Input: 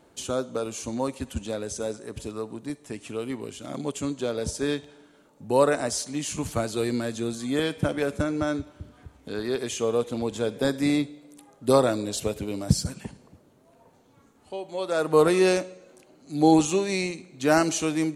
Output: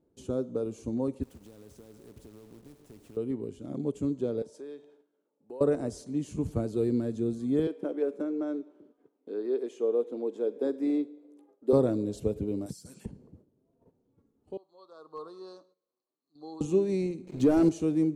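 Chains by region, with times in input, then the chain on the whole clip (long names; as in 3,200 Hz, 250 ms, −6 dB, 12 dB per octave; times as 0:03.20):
0:01.23–0:03.17: downward compressor 16 to 1, threshold −34 dBFS + log-companded quantiser 4 bits + every bin compressed towards the loudest bin 2 to 1
0:04.42–0:05.61: high-shelf EQ 6,100 Hz −5.5 dB + downward compressor 4 to 1, threshold −32 dBFS + high-pass filter 500 Hz
0:07.67–0:11.73: high-pass filter 310 Hz 24 dB per octave + high-shelf EQ 4,600 Hz −9.5 dB
0:12.66–0:13.06: spectral tilt +4.5 dB per octave + downward compressor 5 to 1, threshold −30 dBFS
0:14.57–0:16.61: pair of resonant band-passes 2,200 Hz, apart 1.9 octaves + gain into a clipping stage and back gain 23 dB
0:17.27–0:17.69: downward compressor 1.5 to 1, threshold −30 dBFS + leveller curve on the samples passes 3 + one half of a high-frequency compander encoder only
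whole clip: noise gate −55 dBFS, range −11 dB; drawn EQ curve 440 Hz 0 dB, 630 Hz −10 dB, 1,900 Hz −19 dB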